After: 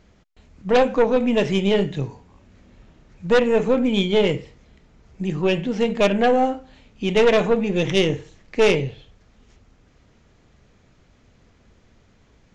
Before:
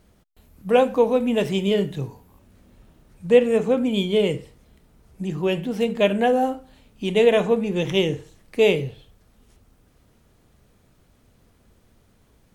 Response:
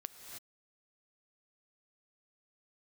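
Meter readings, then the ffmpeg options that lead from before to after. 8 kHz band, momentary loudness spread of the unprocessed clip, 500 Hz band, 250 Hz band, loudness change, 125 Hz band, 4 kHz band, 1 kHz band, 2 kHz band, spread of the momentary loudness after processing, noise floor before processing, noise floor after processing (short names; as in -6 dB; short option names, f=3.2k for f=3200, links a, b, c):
n/a, 15 LU, +0.5 dB, +1.5 dB, +1.0 dB, +2.5 dB, +2.0 dB, +2.5 dB, +3.5 dB, 13 LU, -60 dBFS, -57 dBFS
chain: -af "equalizer=f=2.1k:t=o:w=0.76:g=4,aresample=16000,aeval=exprs='0.75*sin(PI/2*2.24*val(0)/0.75)':c=same,aresample=44100,aeval=exprs='0.891*(cos(1*acos(clip(val(0)/0.891,-1,1)))-cos(1*PI/2))+0.224*(cos(2*acos(clip(val(0)/0.891,-1,1)))-cos(2*PI/2))':c=same,volume=-8.5dB"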